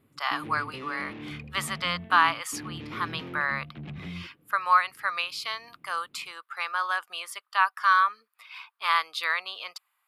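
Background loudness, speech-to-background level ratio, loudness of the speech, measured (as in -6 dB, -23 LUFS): -41.0 LUFS, 13.5 dB, -27.5 LUFS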